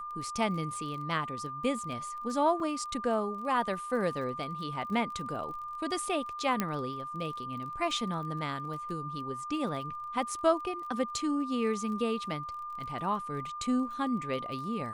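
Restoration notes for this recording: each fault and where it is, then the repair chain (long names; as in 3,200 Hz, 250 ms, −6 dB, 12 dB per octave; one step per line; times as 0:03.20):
surface crackle 26 per second −41 dBFS
whistle 1,200 Hz −37 dBFS
0:02.60: drop-out 2.6 ms
0:06.60: click −14 dBFS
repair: click removal
notch filter 1,200 Hz, Q 30
repair the gap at 0:02.60, 2.6 ms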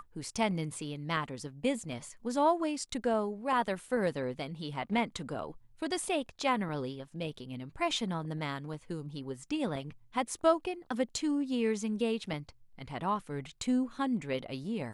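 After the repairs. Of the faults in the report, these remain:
none of them is left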